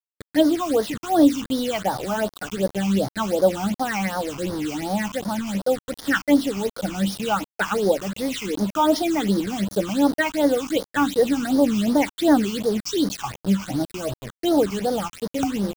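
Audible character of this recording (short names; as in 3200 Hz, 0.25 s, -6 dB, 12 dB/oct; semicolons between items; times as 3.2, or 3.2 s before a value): a quantiser's noise floor 6-bit, dither none; phasing stages 8, 2.7 Hz, lowest notch 510–2600 Hz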